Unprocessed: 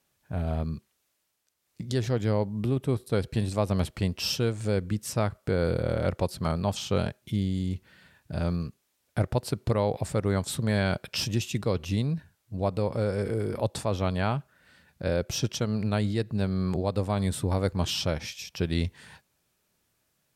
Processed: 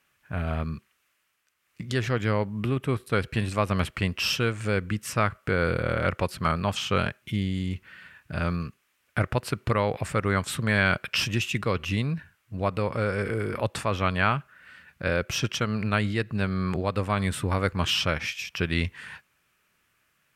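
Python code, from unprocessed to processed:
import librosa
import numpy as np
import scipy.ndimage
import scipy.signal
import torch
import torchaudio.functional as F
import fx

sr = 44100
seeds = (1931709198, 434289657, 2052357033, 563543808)

y = fx.band_shelf(x, sr, hz=1800.0, db=10.5, octaves=1.7)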